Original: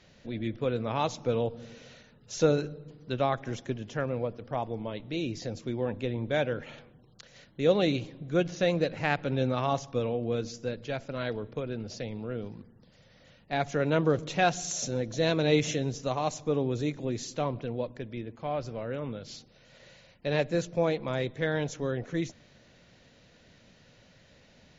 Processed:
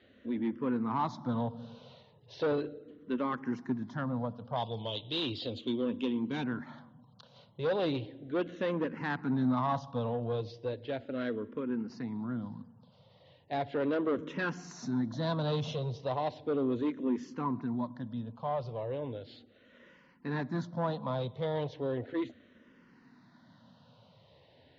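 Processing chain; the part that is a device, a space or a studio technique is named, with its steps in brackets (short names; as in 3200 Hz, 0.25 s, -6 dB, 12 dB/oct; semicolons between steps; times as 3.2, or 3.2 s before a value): 4.56–6.44 resonant high shelf 2400 Hz +10.5 dB, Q 3; barber-pole phaser into a guitar amplifier (endless phaser -0.36 Hz; soft clip -26.5 dBFS, distortion -11 dB; speaker cabinet 100–4100 Hz, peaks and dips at 110 Hz +3 dB, 250 Hz +8 dB, 990 Hz +8 dB, 2400 Hz -8 dB)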